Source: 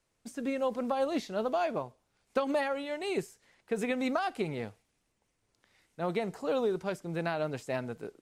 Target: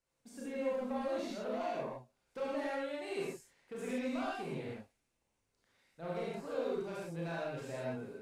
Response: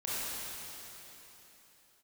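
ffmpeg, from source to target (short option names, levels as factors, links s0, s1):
-filter_complex "[0:a]asoftclip=type=tanh:threshold=0.0447[s0];[1:a]atrim=start_sample=2205,afade=t=out:st=0.22:d=0.01,atrim=end_sample=10143[s1];[s0][s1]afir=irnorm=-1:irlink=0,volume=0.422"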